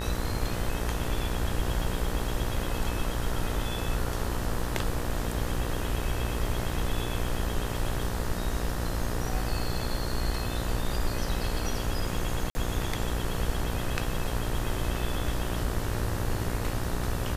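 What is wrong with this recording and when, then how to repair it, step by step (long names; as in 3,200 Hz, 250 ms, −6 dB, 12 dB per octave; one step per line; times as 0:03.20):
mains buzz 60 Hz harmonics 32 −34 dBFS
0:12.50–0:12.55: drop-out 50 ms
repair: hum removal 60 Hz, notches 32
repair the gap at 0:12.50, 50 ms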